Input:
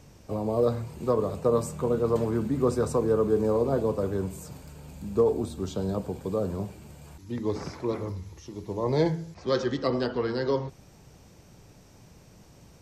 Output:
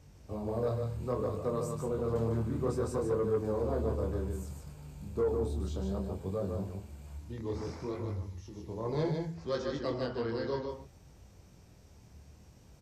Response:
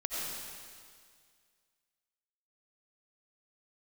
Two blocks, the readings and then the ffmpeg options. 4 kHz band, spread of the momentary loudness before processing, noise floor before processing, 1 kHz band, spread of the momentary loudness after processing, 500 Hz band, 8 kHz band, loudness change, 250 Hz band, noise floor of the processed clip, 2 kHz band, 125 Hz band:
-7.5 dB, 15 LU, -54 dBFS, -7.0 dB, 12 LU, -7.0 dB, -7.5 dB, -7.0 dB, -7.5 dB, -57 dBFS, -7.0 dB, -3.0 dB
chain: -filter_complex "[0:a]flanger=delay=20:depth=7.2:speed=0.62,equalizer=f=69:w=1.8:g=12.5,asplit=2[s0][s1];[s1]aecho=0:1:150:0.562[s2];[s0][s2]amix=inputs=2:normalize=0,asoftclip=type=tanh:threshold=0.15,aresample=32000,aresample=44100,volume=0.562"

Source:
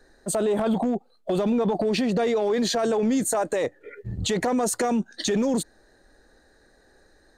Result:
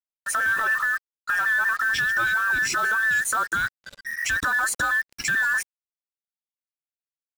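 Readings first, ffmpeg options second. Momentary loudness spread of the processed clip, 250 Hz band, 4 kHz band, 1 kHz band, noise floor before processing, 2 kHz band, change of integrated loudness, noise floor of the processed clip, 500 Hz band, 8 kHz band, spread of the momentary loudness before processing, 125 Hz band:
7 LU, -22.0 dB, -1.5 dB, +3.0 dB, -60 dBFS, +19.0 dB, +2.0 dB, under -85 dBFS, -20.5 dB, +0.5 dB, 7 LU, -11.5 dB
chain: -af "afftfilt=real='real(if(between(b,1,1012),(2*floor((b-1)/92)+1)*92-b,b),0)':imag='imag(if(between(b,1,1012),(2*floor((b-1)/92)+1)*92-b,b),0)*if(between(b,1,1012),-1,1)':win_size=2048:overlap=0.75,acrusher=bits=5:mix=0:aa=0.5"

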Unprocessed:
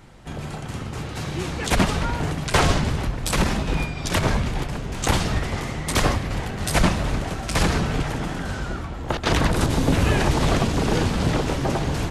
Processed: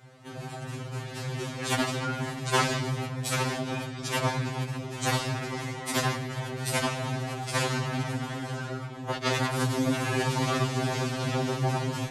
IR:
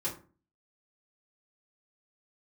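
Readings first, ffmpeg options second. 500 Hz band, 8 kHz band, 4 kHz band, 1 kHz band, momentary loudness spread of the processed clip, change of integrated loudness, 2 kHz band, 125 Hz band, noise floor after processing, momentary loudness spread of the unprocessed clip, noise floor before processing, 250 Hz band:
-5.5 dB, -5.0 dB, -5.0 dB, -5.0 dB, 8 LU, -6.0 dB, -5.0 dB, -6.5 dB, -40 dBFS, 10 LU, -33 dBFS, -7.5 dB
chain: -filter_complex "[0:a]highpass=58,acrossover=split=480[s0][s1];[s0]acompressor=threshold=0.0891:ratio=4[s2];[s2][s1]amix=inputs=2:normalize=0,afftfilt=real='re*2.45*eq(mod(b,6),0)':imag='im*2.45*eq(mod(b,6),0)':win_size=2048:overlap=0.75,volume=0.75"

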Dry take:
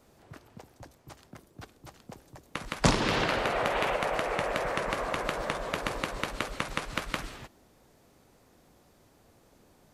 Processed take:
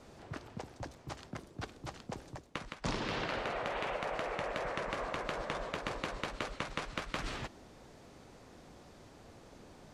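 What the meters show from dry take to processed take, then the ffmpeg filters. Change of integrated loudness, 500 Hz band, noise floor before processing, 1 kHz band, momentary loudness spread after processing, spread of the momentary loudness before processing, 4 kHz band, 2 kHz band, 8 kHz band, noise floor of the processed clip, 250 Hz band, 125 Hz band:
-9.0 dB, -7.0 dB, -63 dBFS, -7.0 dB, 19 LU, 22 LU, -7.5 dB, -7.5 dB, -10.5 dB, -57 dBFS, -7.5 dB, -7.5 dB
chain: -af "lowpass=6900,areverse,acompressor=threshold=0.00708:ratio=4,areverse,volume=2"

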